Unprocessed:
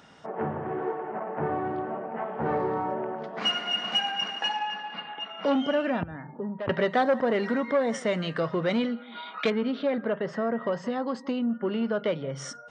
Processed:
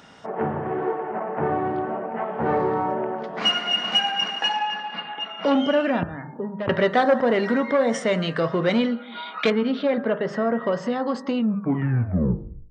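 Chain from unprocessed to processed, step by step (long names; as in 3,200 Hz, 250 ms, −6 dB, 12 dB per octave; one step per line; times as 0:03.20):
turntable brake at the end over 1.35 s
hum removal 51.27 Hz, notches 35
level +5.5 dB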